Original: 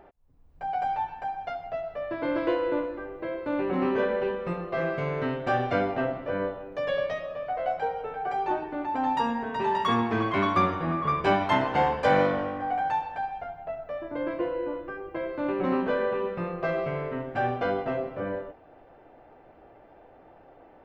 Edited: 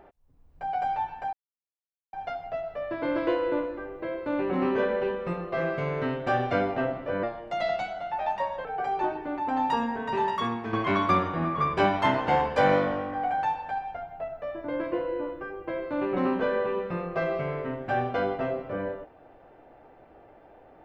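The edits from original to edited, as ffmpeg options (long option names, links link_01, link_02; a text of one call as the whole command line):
ffmpeg -i in.wav -filter_complex "[0:a]asplit=5[link_01][link_02][link_03][link_04][link_05];[link_01]atrim=end=1.33,asetpts=PTS-STARTPTS,afade=type=out:start_time=1.326:duration=0.004:curve=hsin,apad=pad_dur=0.8[link_06];[link_02]atrim=start=1.33:end=6.434,asetpts=PTS-STARTPTS,afade=type=in:duration=0.004:curve=hsin[link_07];[link_03]atrim=start=6.43:end=8.12,asetpts=PTS-STARTPTS,asetrate=52479,aresample=44100,atrim=end_sample=62629,asetpts=PTS-STARTPTS[link_08];[link_04]atrim=start=8.116:end=10.2,asetpts=PTS-STARTPTS,afade=type=out:start_time=1.574:duration=0.51:curve=qua:silence=0.421697[link_09];[link_05]atrim=start=10.2,asetpts=PTS-STARTPTS,afade=type=in:duration=0.004:curve=hsin:silence=0.421697[link_10];[link_06][link_07]concat=n=2:v=0:a=1[link_11];[link_11][link_08]acrossfade=duration=0.004:curve1=hsin:curve2=hsin[link_12];[link_09][link_10]concat=n=2:v=0:a=1[link_13];[link_12][link_13]acrossfade=duration=0.004:curve1=hsin:curve2=hsin" out.wav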